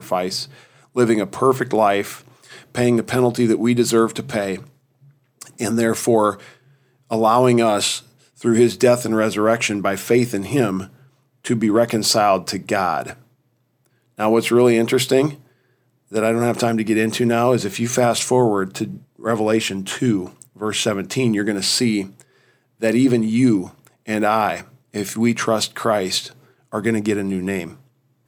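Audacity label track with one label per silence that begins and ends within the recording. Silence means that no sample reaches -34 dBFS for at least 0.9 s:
13.130000	14.190000	silence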